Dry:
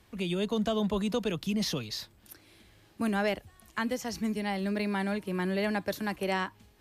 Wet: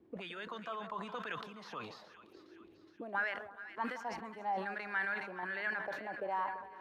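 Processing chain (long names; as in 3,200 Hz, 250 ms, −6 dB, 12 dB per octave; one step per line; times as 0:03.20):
brickwall limiter −25 dBFS, peak gain reduction 6 dB
sample-and-hold tremolo, depth 65%
envelope filter 310–1,600 Hz, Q 4.5, up, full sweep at −30.5 dBFS
echo with a time of its own for lows and highs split 1,200 Hz, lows 169 ms, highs 417 ms, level −13 dB
level that may fall only so fast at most 68 dB per second
level +9.5 dB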